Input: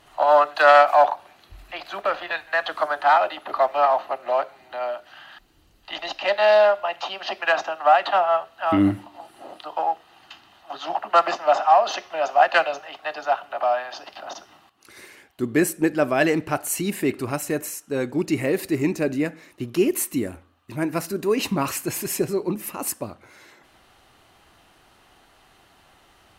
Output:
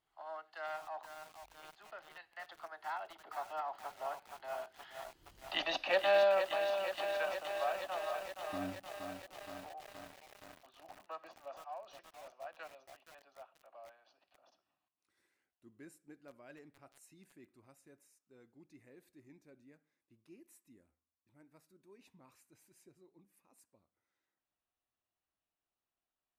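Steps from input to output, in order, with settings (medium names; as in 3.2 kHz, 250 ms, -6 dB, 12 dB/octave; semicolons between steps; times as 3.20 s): Doppler pass-by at 5.52 s, 22 m/s, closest 5.2 m; bit-crushed delay 470 ms, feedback 80%, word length 8-bit, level -7 dB; trim -3 dB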